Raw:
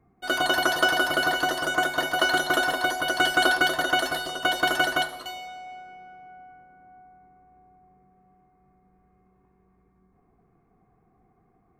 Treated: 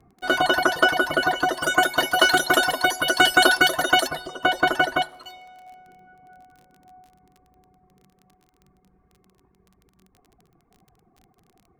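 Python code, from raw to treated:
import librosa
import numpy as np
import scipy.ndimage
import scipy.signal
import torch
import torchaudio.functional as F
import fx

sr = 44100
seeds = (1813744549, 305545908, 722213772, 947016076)

y = fx.dereverb_blind(x, sr, rt60_s=1.7)
y = fx.high_shelf(y, sr, hz=3300.0, db=fx.steps((0.0, -8.0), (1.61, 3.0), (4.06, -11.5)))
y = fx.dmg_crackle(y, sr, seeds[0], per_s=25.0, level_db=-46.0)
y = y * 10.0 ** (6.0 / 20.0)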